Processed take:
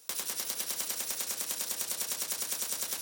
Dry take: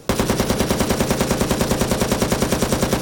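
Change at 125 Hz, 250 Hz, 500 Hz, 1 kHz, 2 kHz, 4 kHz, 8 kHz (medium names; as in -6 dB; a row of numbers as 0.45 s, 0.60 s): under -35 dB, -35.0 dB, -29.0 dB, -23.0 dB, -17.0 dB, -10.5 dB, -6.0 dB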